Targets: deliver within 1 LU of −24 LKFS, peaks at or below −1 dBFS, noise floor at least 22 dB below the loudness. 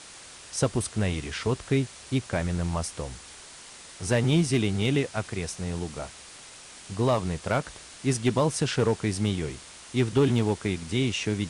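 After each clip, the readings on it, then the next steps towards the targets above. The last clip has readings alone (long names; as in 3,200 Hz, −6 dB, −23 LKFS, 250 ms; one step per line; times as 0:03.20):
share of clipped samples 0.3%; peaks flattened at −15.0 dBFS; background noise floor −47 dBFS; target noise floor −50 dBFS; integrated loudness −27.5 LKFS; sample peak −15.0 dBFS; target loudness −24.0 LKFS
→ clipped peaks rebuilt −15 dBFS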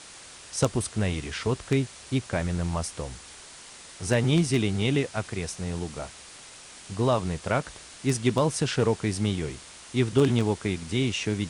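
share of clipped samples 0.0%; background noise floor −47 dBFS; target noise floor −49 dBFS
→ noise reduction from a noise print 6 dB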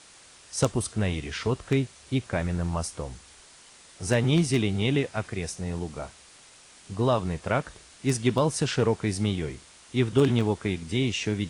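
background noise floor −53 dBFS; integrated loudness −27.0 LKFS; sample peak −6.0 dBFS; target loudness −24.0 LKFS
→ level +3 dB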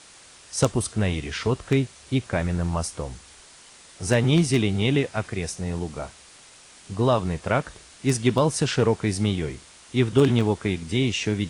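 integrated loudness −24.0 LKFS; sample peak −3.0 dBFS; background noise floor −50 dBFS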